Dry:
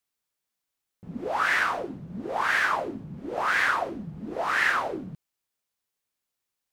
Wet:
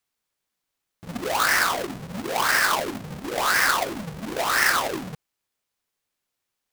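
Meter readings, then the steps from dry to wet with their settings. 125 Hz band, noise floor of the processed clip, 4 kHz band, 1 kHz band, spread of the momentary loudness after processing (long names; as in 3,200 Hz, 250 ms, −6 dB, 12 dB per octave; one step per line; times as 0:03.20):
+3.5 dB, −83 dBFS, +9.5 dB, +3.0 dB, 14 LU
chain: each half-wave held at its own peak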